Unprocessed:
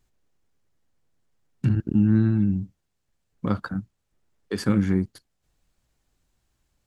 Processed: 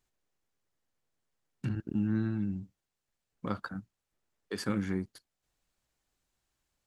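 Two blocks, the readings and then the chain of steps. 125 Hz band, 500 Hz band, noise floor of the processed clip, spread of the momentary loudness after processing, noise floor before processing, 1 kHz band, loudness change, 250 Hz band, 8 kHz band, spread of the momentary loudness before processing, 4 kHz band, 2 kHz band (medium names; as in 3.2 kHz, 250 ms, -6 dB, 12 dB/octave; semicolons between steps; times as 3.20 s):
-12.5 dB, -8.0 dB, under -85 dBFS, 13 LU, -76 dBFS, -5.5 dB, -11.0 dB, -10.5 dB, no reading, 14 LU, -5.0 dB, -5.5 dB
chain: bass shelf 290 Hz -9 dB; trim -5 dB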